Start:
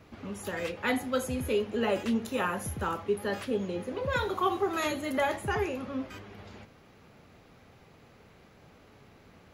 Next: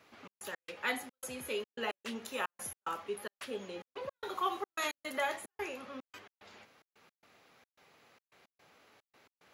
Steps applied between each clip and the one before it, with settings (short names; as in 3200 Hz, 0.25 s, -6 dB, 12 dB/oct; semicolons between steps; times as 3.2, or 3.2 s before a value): HPF 980 Hz 6 dB/oct; step gate "xx.x.xxx.xxx.x.x" 110 bpm -60 dB; gain -1.5 dB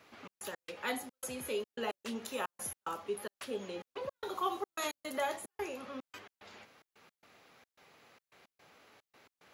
dynamic EQ 2000 Hz, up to -7 dB, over -50 dBFS, Q 0.81; gain +2 dB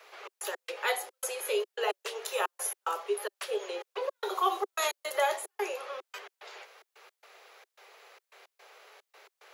steep high-pass 380 Hz 72 dB/oct; gain +7 dB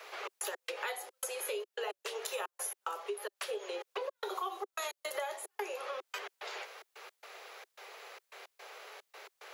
compressor 6:1, threshold -41 dBFS, peak gain reduction 18 dB; gain +5 dB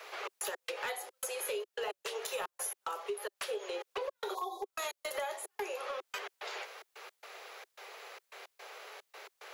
spectral repair 4.37–4.65, 1100–3300 Hz after; hard clip -31 dBFS, distortion -19 dB; gain +1 dB